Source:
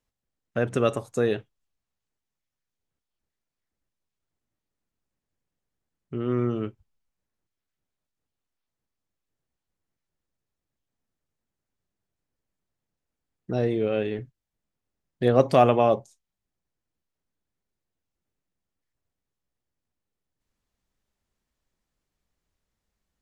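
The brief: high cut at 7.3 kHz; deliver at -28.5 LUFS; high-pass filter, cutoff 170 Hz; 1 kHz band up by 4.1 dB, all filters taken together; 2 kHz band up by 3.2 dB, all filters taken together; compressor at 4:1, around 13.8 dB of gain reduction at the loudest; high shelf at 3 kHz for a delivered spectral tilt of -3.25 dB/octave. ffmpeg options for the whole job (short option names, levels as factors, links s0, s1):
-af "highpass=170,lowpass=7300,equalizer=f=1000:t=o:g=6,equalizer=f=2000:t=o:g=4,highshelf=f=3000:g=-4.5,acompressor=threshold=0.0447:ratio=4,volume=1.58"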